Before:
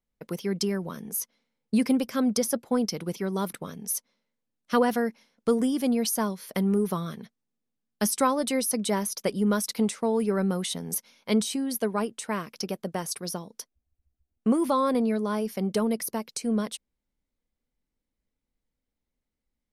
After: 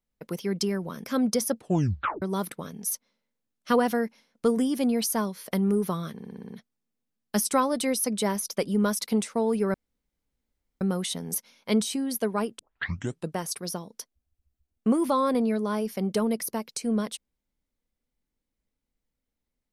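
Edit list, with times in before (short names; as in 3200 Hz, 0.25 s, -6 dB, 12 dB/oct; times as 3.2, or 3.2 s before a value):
1.04–2.07 cut
2.57 tape stop 0.68 s
7.16 stutter 0.06 s, 7 plays
10.41 insert room tone 1.07 s
12.19 tape start 0.76 s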